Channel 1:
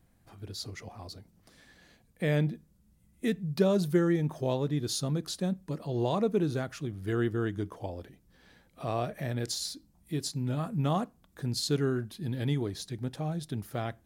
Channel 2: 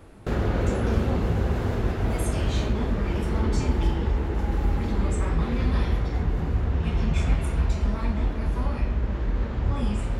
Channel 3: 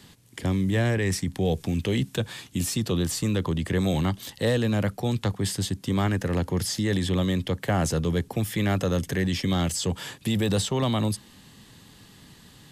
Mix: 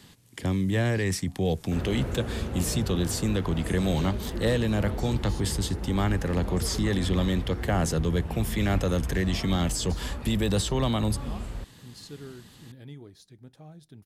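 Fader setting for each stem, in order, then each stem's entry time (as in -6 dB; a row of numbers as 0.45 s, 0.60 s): -14.0 dB, -8.5 dB, -1.5 dB; 0.40 s, 1.45 s, 0.00 s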